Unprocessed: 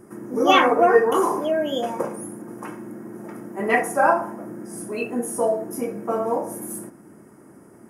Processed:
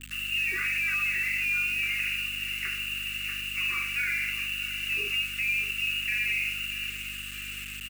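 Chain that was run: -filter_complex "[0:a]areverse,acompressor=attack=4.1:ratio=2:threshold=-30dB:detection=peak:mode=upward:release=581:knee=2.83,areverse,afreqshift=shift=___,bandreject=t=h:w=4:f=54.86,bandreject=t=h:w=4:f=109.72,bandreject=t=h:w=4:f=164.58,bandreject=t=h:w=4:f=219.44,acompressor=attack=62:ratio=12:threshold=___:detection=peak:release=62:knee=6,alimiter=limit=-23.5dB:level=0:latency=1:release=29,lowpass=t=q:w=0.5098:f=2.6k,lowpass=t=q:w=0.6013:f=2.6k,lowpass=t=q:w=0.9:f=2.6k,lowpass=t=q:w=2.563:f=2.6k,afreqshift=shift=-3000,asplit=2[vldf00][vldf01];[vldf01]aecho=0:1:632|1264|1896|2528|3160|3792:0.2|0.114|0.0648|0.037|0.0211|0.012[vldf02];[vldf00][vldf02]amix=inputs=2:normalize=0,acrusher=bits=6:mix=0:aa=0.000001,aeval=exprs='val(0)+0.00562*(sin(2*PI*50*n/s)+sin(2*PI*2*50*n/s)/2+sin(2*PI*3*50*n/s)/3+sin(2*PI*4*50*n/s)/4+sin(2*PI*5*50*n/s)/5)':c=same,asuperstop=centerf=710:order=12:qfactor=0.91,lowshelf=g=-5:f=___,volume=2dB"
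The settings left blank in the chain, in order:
-48, -26dB, 170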